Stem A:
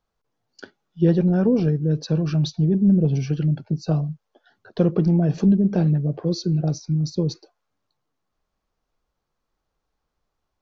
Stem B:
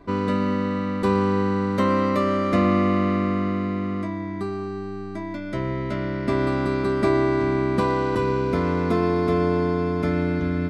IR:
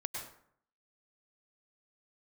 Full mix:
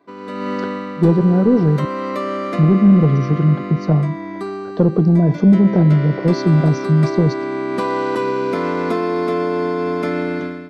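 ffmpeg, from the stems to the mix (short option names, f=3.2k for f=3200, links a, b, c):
-filter_complex "[0:a]lowpass=4k,equalizer=f=2.6k:t=o:w=1.6:g=-12,volume=-3dB,asplit=3[a][b][c];[a]atrim=end=1.85,asetpts=PTS-STARTPTS,afade=t=out:st=1.846:d=0.004:c=hsin[d];[b]atrim=start=1.85:end=2.54,asetpts=PTS-STARTPTS,volume=0[e];[c]atrim=start=2.54,asetpts=PTS-STARTPTS,afade=t=in:d=0.004:c=hsin[f];[d][e][f]concat=n=3:v=0:a=1[g];[1:a]highpass=260,acompressor=threshold=-26dB:ratio=3,volume=-7dB[h];[g][h]amix=inputs=2:normalize=0,highpass=82,dynaudnorm=f=160:g=5:m=16dB,asoftclip=type=tanh:threshold=-2.5dB"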